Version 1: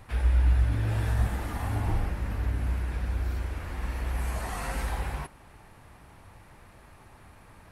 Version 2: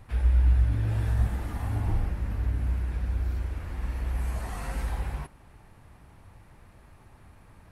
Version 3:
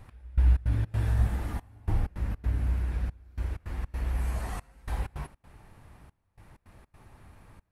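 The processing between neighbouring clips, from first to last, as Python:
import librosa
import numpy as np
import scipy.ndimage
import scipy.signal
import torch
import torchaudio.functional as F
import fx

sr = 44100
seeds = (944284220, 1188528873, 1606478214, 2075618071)

y1 = fx.low_shelf(x, sr, hz=290.0, db=6.5)
y1 = y1 * 10.0 ** (-5.0 / 20.0)
y2 = fx.step_gate(y1, sr, bpm=160, pattern='x...xx.xx.xxxxxx', floor_db=-24.0, edge_ms=4.5)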